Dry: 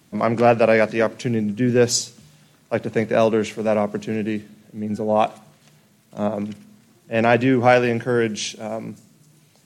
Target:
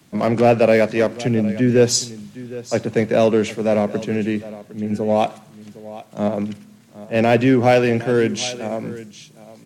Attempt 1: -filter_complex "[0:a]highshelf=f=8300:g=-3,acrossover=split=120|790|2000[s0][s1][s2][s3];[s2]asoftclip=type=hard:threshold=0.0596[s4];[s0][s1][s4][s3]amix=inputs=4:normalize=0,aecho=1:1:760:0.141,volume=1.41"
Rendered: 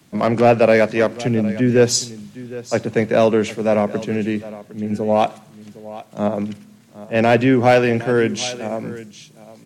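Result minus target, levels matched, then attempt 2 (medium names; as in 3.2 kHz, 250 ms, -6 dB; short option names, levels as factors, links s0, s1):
hard clipper: distortion -6 dB
-filter_complex "[0:a]highshelf=f=8300:g=-3,acrossover=split=120|790|2000[s0][s1][s2][s3];[s2]asoftclip=type=hard:threshold=0.0188[s4];[s0][s1][s4][s3]amix=inputs=4:normalize=0,aecho=1:1:760:0.141,volume=1.41"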